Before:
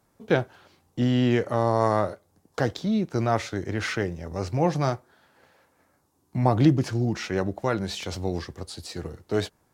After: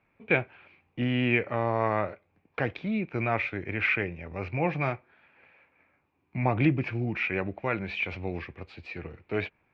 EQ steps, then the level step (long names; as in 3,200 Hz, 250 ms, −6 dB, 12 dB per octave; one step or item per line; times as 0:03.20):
transistor ladder low-pass 2,500 Hz, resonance 85%
+7.5 dB